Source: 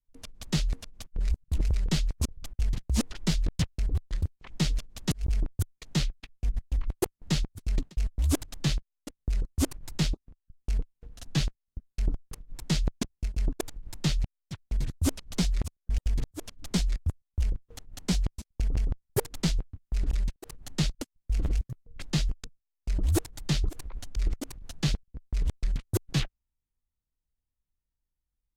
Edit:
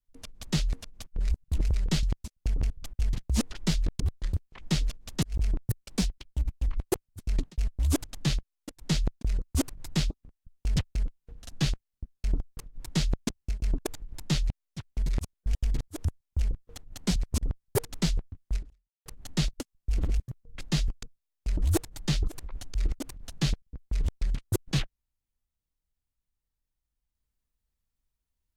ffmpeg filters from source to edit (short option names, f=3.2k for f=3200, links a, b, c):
-filter_complex "[0:a]asplit=16[a][b][c][d][e][f][g][h][i][j][k][l][m][n][o][p];[a]atrim=end=2.032[q];[b]atrim=start=18.168:end=18.842[r];[c]atrim=start=2.298:end=3.602[s];[d]atrim=start=3.888:end=5.534[t];[e]atrim=start=5.53:end=6.63,asetpts=PTS-STARTPTS,asetrate=54684,aresample=44100[u];[f]atrim=start=6.626:end=7.192[v];[g]atrim=start=7.478:end=9.26[w];[h]atrim=start=12.57:end=13.03[x];[i]atrim=start=9.16:end=10.802[y];[j]atrim=start=3.598:end=3.892[z];[k]atrim=start=10.798:end=14.832[aa];[l]atrim=start=15.518:end=16.482[ab];[m]atrim=start=17.058:end=18.172[ac];[n]atrim=start=2.028:end=2.302[ad];[o]atrim=start=18.838:end=20.47,asetpts=PTS-STARTPTS,afade=t=out:st=1.132:d=0.5:c=exp[ae];[p]atrim=start=20.47,asetpts=PTS-STARTPTS,afade=t=in:d=0.004:c=hsin[af];[q][r]acrossfade=d=0.004:c1=hsin:c2=hsin[ag];[ag][s]acrossfade=d=0.004:c1=hsin:c2=hsin[ah];[ah][t]acrossfade=d=0.004:c1=hsin:c2=hsin[ai];[ai][u]acrossfade=d=0.004:c1=hsin:c2=hsin[aj];[aj][v]acrossfade=d=0.004:c1=hsin:c2=hsin[ak];[ak][w]acrossfade=d=0.004:c1=hsin:c2=hsin[al];[al][x]acrossfade=d=0.1:c1=tri:c2=tri[am];[am][y]acrossfade=d=0.1:c1=tri:c2=tri[an];[an][z]acrossfade=d=0.004:c1=hsin:c2=hsin[ao];[ao][aa]acrossfade=d=0.004:c1=hsin:c2=hsin[ap];[ap][ab]acrossfade=d=0.004:c1=hsin:c2=hsin[aq];[aq][ac]acrossfade=d=0.004:c1=hsin:c2=hsin[ar];[ar][ad]acrossfade=d=0.004:c1=hsin:c2=hsin[as];[ae][af]concat=n=2:v=0:a=1[at];[as][at]acrossfade=d=0.004:c1=hsin:c2=hsin"